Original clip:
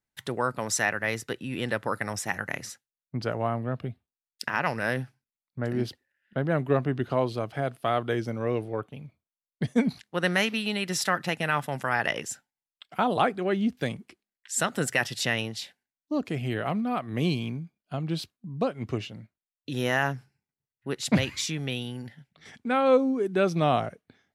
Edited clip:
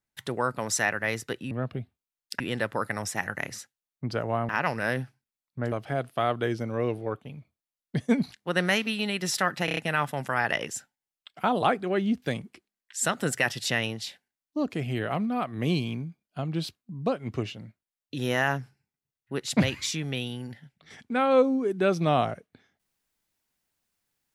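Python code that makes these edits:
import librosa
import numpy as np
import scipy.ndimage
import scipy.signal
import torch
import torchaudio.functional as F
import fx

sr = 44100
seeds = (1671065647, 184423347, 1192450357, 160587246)

y = fx.edit(x, sr, fx.move(start_s=3.6, length_s=0.89, to_s=1.51),
    fx.cut(start_s=5.72, length_s=1.67),
    fx.stutter(start_s=11.32, slice_s=0.03, count=5), tone=tone)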